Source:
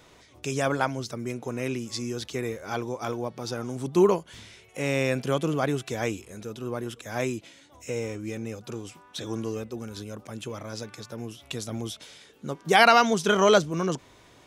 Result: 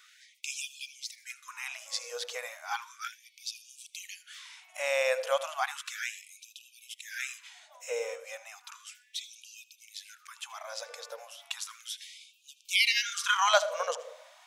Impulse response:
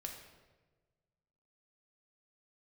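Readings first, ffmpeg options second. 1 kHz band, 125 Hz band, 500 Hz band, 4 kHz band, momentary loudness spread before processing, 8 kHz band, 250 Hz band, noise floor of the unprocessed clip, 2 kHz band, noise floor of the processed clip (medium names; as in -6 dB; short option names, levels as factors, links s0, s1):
-8.0 dB, under -40 dB, -9.5 dB, 0.0 dB, 18 LU, 0.0 dB, under -40 dB, -55 dBFS, -3.0 dB, -64 dBFS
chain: -filter_complex "[0:a]asplit=2[s0][s1];[s1]equalizer=f=380:t=o:w=1.6:g=11.5[s2];[1:a]atrim=start_sample=2205,adelay=79[s3];[s2][s3]afir=irnorm=-1:irlink=0,volume=0.178[s4];[s0][s4]amix=inputs=2:normalize=0,afftfilt=real='re*gte(b*sr/1024,450*pow(2400/450,0.5+0.5*sin(2*PI*0.34*pts/sr)))':imag='im*gte(b*sr/1024,450*pow(2400/450,0.5+0.5*sin(2*PI*0.34*pts/sr)))':win_size=1024:overlap=0.75"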